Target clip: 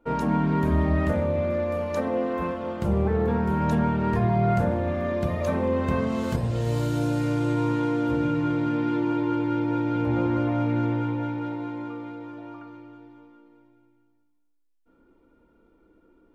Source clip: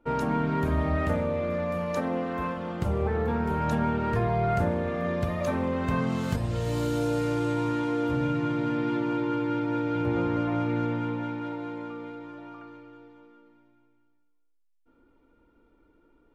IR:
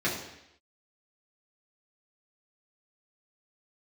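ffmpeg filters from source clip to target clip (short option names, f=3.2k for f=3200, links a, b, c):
-filter_complex "[0:a]asplit=2[a][b];[1:a]atrim=start_sample=2205,lowpass=1.2k[c];[b][c]afir=irnorm=-1:irlink=0,volume=-13dB[d];[a][d]amix=inputs=2:normalize=0"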